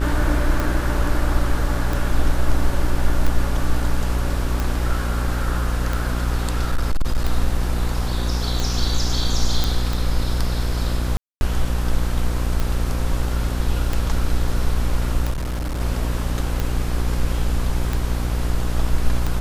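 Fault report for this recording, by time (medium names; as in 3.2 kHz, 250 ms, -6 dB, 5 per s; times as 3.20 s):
buzz 60 Hz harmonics 29 -23 dBFS
tick 45 rpm
6.60–7.24 s: clipped -14 dBFS
9.64 s: pop
11.17–11.41 s: dropout 241 ms
15.30–15.80 s: clipped -21.5 dBFS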